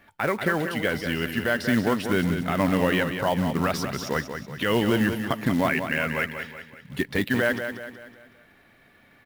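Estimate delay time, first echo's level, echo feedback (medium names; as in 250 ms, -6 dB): 187 ms, -8.0 dB, 45%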